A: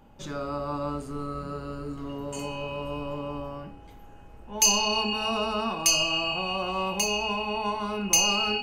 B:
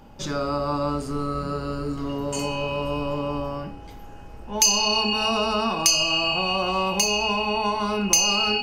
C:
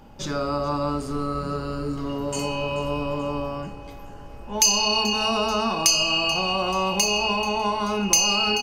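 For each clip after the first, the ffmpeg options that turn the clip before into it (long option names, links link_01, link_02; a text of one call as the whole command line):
ffmpeg -i in.wav -af "equalizer=frequency=5100:width_type=o:width=0.45:gain=7.5,acompressor=threshold=-28dB:ratio=2,volume=7dB" out.wav
ffmpeg -i in.wav -af "aecho=1:1:434|868|1302|1736|2170:0.119|0.0654|0.036|0.0198|0.0109" out.wav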